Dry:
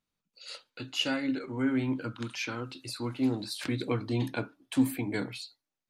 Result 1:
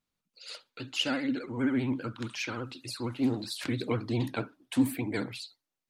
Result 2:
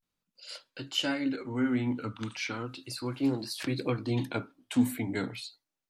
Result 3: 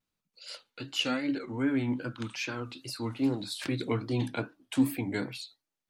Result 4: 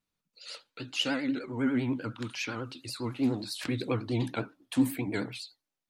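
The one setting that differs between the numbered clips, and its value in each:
vibrato, rate: 15 Hz, 0.36 Hz, 2.5 Hz, 10 Hz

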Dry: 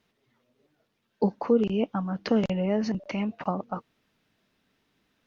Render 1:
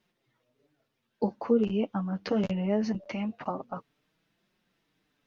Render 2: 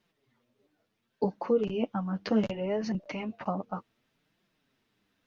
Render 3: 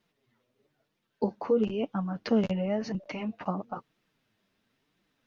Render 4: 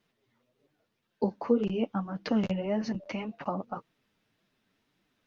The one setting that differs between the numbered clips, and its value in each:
flange, rate: 0.22 Hz, 0.68 Hz, 1 Hz, 1.8 Hz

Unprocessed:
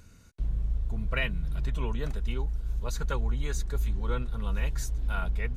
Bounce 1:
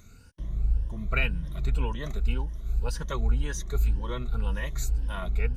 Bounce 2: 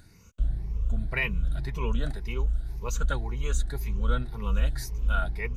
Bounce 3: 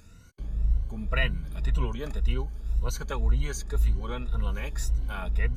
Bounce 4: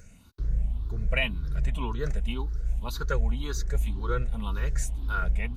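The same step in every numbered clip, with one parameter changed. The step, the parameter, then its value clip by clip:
drifting ripple filter, ripples per octave: 1.2, 0.8, 2, 0.54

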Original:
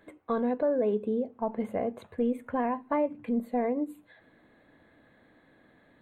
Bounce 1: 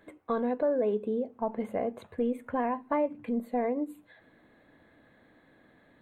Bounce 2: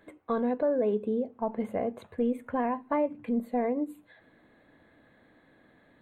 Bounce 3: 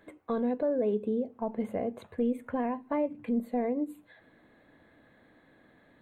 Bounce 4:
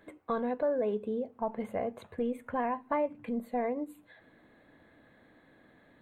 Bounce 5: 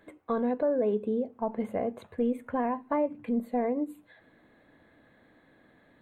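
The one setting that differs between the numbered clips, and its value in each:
dynamic bell, frequency: 110 Hz, 9.9 kHz, 1.2 kHz, 280 Hz, 3.3 kHz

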